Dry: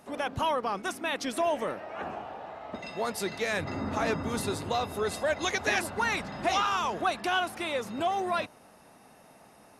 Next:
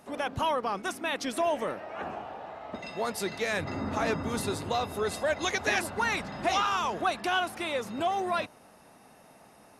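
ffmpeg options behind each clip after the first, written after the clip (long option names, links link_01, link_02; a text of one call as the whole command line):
ffmpeg -i in.wav -af anull out.wav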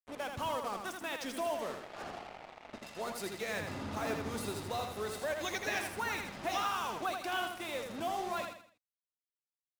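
ffmpeg -i in.wav -filter_complex "[0:a]bandreject=frequency=60.7:width_type=h:width=4,bandreject=frequency=121.4:width_type=h:width=4,bandreject=frequency=182.1:width_type=h:width=4,acrusher=bits=5:mix=0:aa=0.5,asplit=2[link_01][link_02];[link_02]aecho=0:1:81|162|243|324:0.531|0.191|0.0688|0.0248[link_03];[link_01][link_03]amix=inputs=2:normalize=0,volume=-8.5dB" out.wav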